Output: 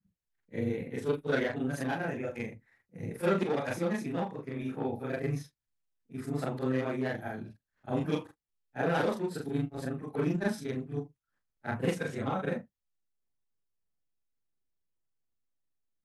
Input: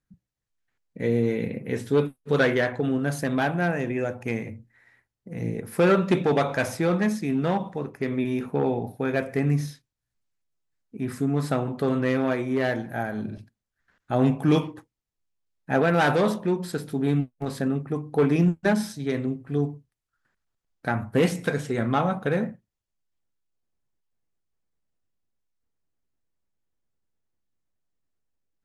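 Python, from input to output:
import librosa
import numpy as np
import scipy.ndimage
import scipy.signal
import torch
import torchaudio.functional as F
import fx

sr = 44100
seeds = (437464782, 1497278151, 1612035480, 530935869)

y = fx.frame_reverse(x, sr, frame_ms=155.0)
y = fx.stretch_grains(y, sr, factor=0.56, grain_ms=79.0)
y = y * librosa.db_to_amplitude(-3.5)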